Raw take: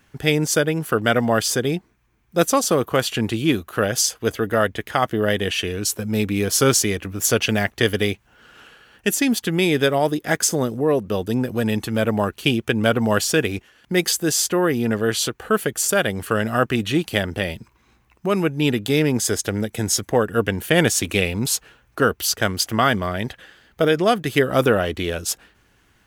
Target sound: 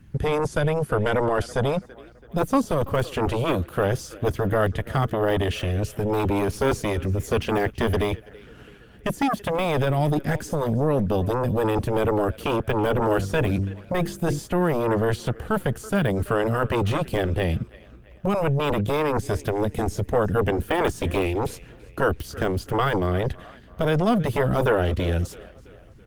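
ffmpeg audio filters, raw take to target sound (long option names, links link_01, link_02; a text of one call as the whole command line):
ffmpeg -i in.wav -filter_complex "[0:a]deesser=0.6,asettb=1/sr,asplit=3[link_01][link_02][link_03];[link_01]atrim=end=12.884[link_04];[link_02]atrim=start=12.88:end=14.39,asetpts=PTS-STARTPTS,afade=type=in:duration=0.004:curve=qsin,afade=type=out:start_time=1.506:duration=0.004:curve=qsin,bandreject=frequency=48.9:width_type=h:width=4,bandreject=frequency=97.8:width_type=h:width=4,bandreject=frequency=146.7:width_type=h:width=4,bandreject=frequency=195.6:width_type=h:width=4,bandreject=frequency=244.5:width_type=h:width=4,bandreject=frequency=293.4:width_type=h:width=4,bandreject=frequency=342.3:width_type=h:width=4,bandreject=frequency=391.2:width_type=h:width=4,bandreject=frequency=440.1:width_type=h:width=4,bandreject=frequency=489:width_type=h:width=4[link_05];[link_03]atrim=start=14.386[link_06];[link_04][link_05]acrossfade=duration=0.004:curve1=hsin:curve2=qsin[link_07];[link_07][link_06]acrossfade=duration=0.004:curve1=qsin:curve2=hsin,acrossover=split=240[link_08][link_09];[link_08]aeval=exprs='0.168*sin(PI/2*5.62*val(0)/0.168)':channel_layout=same[link_10];[link_09]asplit=2[link_11][link_12];[link_12]adelay=331,lowpass=frequency=4200:poles=1,volume=-17.5dB,asplit=2[link_13][link_14];[link_14]adelay=331,lowpass=frequency=4200:poles=1,volume=0.54,asplit=2[link_15][link_16];[link_16]adelay=331,lowpass=frequency=4200:poles=1,volume=0.54,asplit=2[link_17][link_18];[link_18]adelay=331,lowpass=frequency=4200:poles=1,volume=0.54,asplit=2[link_19][link_20];[link_20]adelay=331,lowpass=frequency=4200:poles=1,volume=0.54[link_21];[link_11][link_13][link_15][link_17][link_19][link_21]amix=inputs=6:normalize=0[link_22];[link_10][link_22]amix=inputs=2:normalize=0,volume=-4dB" -ar 48000 -c:a libopus -b:a 24k out.opus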